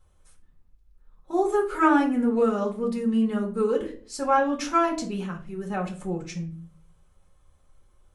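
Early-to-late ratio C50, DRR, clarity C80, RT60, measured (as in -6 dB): 11.0 dB, -1.0 dB, 17.0 dB, 0.45 s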